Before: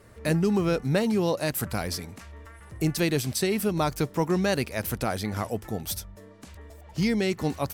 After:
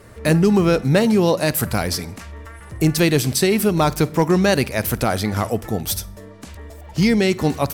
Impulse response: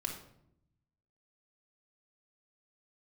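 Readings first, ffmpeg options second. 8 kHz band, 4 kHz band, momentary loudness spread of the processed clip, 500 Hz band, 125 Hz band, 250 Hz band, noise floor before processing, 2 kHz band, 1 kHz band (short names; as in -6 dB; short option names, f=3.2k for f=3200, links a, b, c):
+8.5 dB, +8.5 dB, 15 LU, +8.5 dB, +8.5 dB, +8.5 dB, -48 dBFS, +8.5 dB, +8.5 dB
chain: -filter_complex "[0:a]asplit=2[a][b];[1:a]atrim=start_sample=2205,adelay=51[c];[b][c]afir=irnorm=-1:irlink=0,volume=-21dB[d];[a][d]amix=inputs=2:normalize=0,volume=16dB,asoftclip=hard,volume=-16dB,volume=8.5dB"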